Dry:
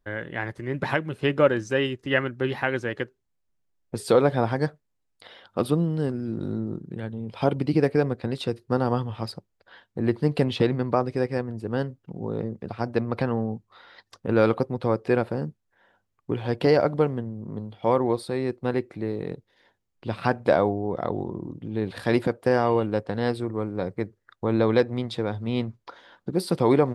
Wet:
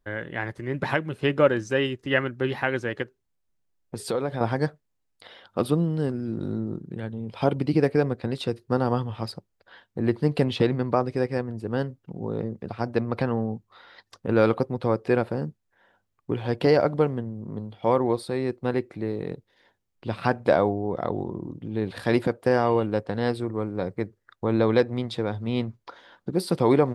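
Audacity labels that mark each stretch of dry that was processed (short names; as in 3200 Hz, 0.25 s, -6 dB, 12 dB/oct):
3.020000	4.410000	compressor 2:1, threshold -29 dBFS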